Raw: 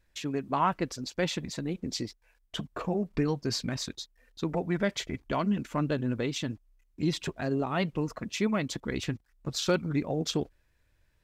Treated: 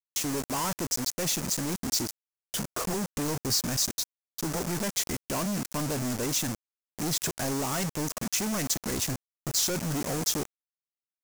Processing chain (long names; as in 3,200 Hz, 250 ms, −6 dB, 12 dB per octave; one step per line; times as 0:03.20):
log-companded quantiser 2 bits
high shelf with overshoot 4,700 Hz +8 dB, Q 1.5
level −4 dB